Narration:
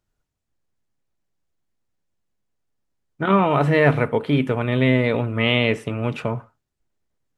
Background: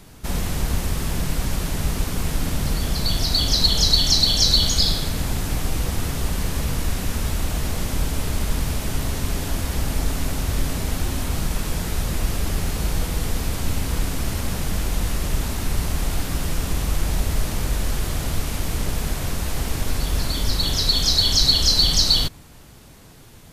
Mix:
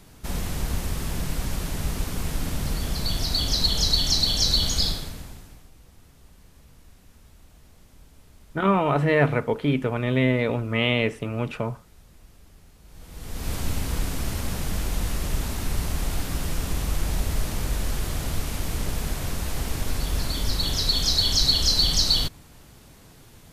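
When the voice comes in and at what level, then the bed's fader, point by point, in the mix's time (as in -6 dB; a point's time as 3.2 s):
5.35 s, -3.5 dB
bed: 4.86 s -4.5 dB
5.71 s -28.5 dB
12.83 s -28.5 dB
13.51 s -3.5 dB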